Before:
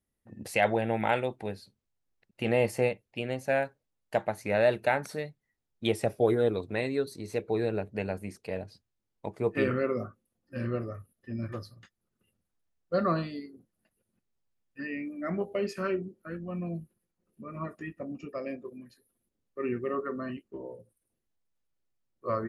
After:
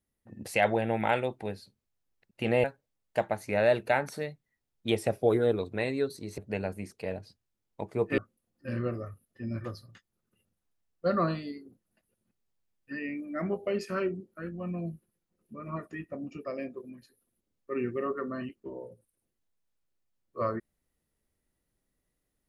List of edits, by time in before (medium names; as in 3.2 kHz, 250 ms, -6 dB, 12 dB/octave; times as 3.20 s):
2.64–3.61 s: delete
7.35–7.83 s: delete
9.63–10.06 s: delete